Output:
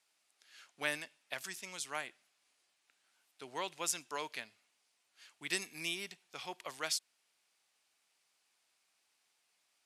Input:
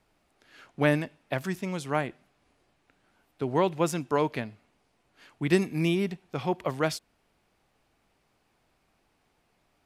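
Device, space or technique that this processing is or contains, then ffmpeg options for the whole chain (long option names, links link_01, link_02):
piezo pickup straight into a mixer: -af "lowpass=8900,aderivative,volume=5dB"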